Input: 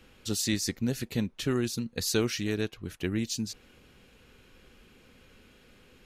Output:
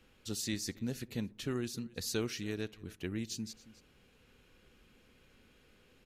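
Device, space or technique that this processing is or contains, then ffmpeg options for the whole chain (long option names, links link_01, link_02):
ducked delay: -filter_complex "[0:a]asplit=2[link_01][link_02];[link_02]adelay=63,lowpass=frequency=1100:poles=1,volume=-21dB,asplit=2[link_03][link_04];[link_04]adelay=63,lowpass=frequency=1100:poles=1,volume=0.5,asplit=2[link_05][link_06];[link_06]adelay=63,lowpass=frequency=1100:poles=1,volume=0.5,asplit=2[link_07][link_08];[link_08]adelay=63,lowpass=frequency=1100:poles=1,volume=0.5[link_09];[link_01][link_03][link_05][link_07][link_09]amix=inputs=5:normalize=0,asplit=3[link_10][link_11][link_12];[link_11]adelay=275,volume=-6dB[link_13];[link_12]apad=whole_len=290397[link_14];[link_13][link_14]sidechaincompress=threshold=-51dB:ratio=3:attack=16:release=559[link_15];[link_10][link_15]amix=inputs=2:normalize=0,volume=-8dB"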